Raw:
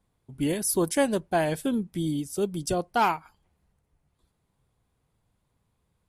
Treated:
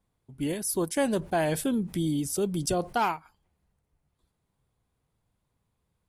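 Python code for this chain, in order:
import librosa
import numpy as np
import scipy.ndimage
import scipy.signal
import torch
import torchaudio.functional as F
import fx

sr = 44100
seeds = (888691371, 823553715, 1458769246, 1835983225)

y = fx.env_flatten(x, sr, amount_pct=50, at=(0.97, 2.98))
y = y * 10.0 ** (-3.5 / 20.0)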